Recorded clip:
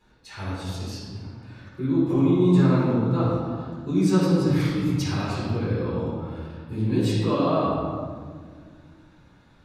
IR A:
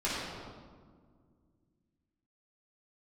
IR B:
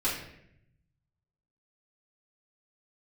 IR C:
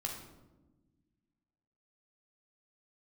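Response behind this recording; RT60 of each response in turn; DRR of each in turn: A; 1.8 s, 0.75 s, 1.2 s; -10.0 dB, -9.0 dB, 0.0 dB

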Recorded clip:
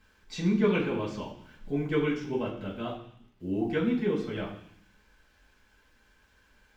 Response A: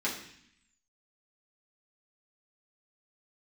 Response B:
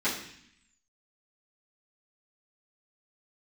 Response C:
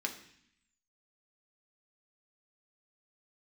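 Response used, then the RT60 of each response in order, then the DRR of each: A; 0.65 s, 0.65 s, 0.65 s; -7.0 dB, -13.5 dB, 2.0 dB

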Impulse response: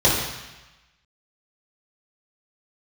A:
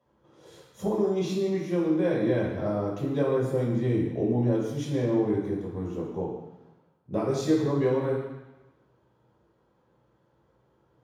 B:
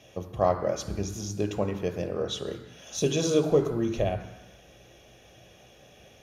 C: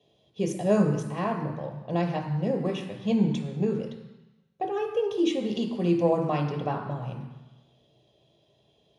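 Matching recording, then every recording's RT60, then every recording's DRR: A; 1.1 s, 1.1 s, 1.1 s; -7.5 dB, 7.0 dB, 2.5 dB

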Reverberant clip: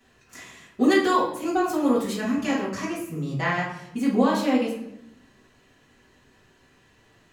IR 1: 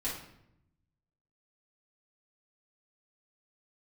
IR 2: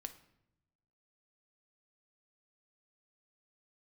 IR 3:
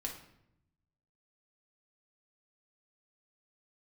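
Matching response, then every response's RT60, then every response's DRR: 1; 0.80 s, 0.85 s, 0.80 s; -8.0 dB, 8.0 dB, 0.0 dB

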